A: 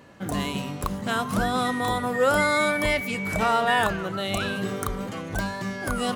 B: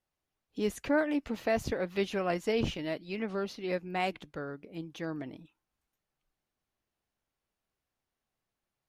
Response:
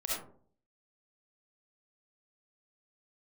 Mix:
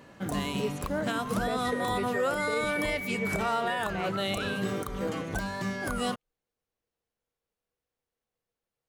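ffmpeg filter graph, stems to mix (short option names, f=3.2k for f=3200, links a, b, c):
-filter_complex "[0:a]bandreject=f=50:t=h:w=6,bandreject=f=100:t=h:w=6,volume=-1.5dB[a];[1:a]equalizer=f=480:t=o:w=0.23:g=14,volume=-3.5dB[b];[a][b]amix=inputs=2:normalize=0,alimiter=limit=-19.5dB:level=0:latency=1:release=222"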